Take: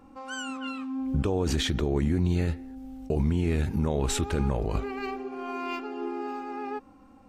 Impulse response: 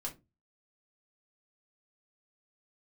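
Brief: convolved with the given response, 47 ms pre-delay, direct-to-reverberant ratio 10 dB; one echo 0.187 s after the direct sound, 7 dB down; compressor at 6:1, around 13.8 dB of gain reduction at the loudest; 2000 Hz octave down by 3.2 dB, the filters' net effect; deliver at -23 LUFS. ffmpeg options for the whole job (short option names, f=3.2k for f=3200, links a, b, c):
-filter_complex "[0:a]equalizer=f=2k:t=o:g=-4.5,acompressor=threshold=-37dB:ratio=6,aecho=1:1:187:0.447,asplit=2[a][b];[1:a]atrim=start_sample=2205,adelay=47[c];[b][c]afir=irnorm=-1:irlink=0,volume=-9.5dB[d];[a][d]amix=inputs=2:normalize=0,volume=17dB"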